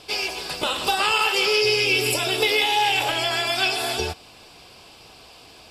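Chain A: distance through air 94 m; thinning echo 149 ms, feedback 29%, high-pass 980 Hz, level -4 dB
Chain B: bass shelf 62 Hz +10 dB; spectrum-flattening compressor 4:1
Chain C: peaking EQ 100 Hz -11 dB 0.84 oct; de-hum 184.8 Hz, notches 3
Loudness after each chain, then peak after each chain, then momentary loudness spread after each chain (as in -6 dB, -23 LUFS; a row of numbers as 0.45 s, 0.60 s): -21.0 LUFS, -22.5 LUFS, -20.5 LUFS; -7.5 dBFS, -6.5 dBFS, -7.0 dBFS; 9 LU, 8 LU, 8 LU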